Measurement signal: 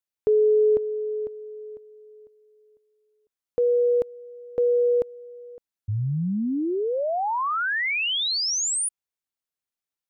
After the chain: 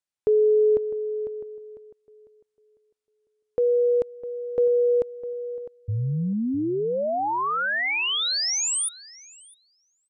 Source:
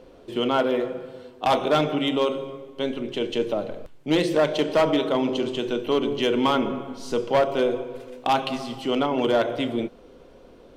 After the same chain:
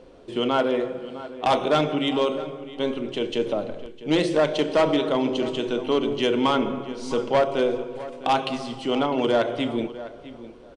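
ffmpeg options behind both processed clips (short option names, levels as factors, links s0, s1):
-filter_complex "[0:a]asplit=2[s0][s1];[s1]adelay=655,lowpass=f=2900:p=1,volume=0.178,asplit=2[s2][s3];[s3]adelay=655,lowpass=f=2900:p=1,volume=0.18[s4];[s2][s4]amix=inputs=2:normalize=0[s5];[s0][s5]amix=inputs=2:normalize=0,aresample=22050,aresample=44100"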